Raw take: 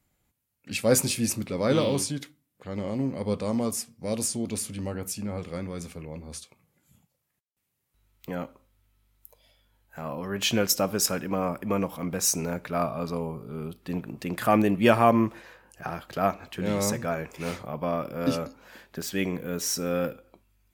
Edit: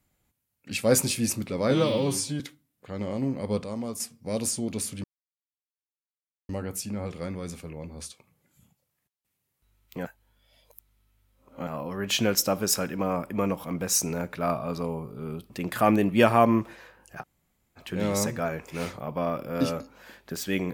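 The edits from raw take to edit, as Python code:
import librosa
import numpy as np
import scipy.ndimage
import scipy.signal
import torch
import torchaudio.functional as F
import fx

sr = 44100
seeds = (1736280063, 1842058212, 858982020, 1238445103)

y = fx.edit(x, sr, fx.stretch_span(start_s=1.71, length_s=0.46, factor=1.5),
    fx.clip_gain(start_s=3.41, length_s=0.36, db=-6.0),
    fx.insert_silence(at_s=4.81, length_s=1.45),
    fx.reverse_span(start_s=8.37, length_s=1.62),
    fx.cut(start_s=13.82, length_s=0.34),
    fx.room_tone_fill(start_s=15.87, length_s=0.57, crossfade_s=0.06), tone=tone)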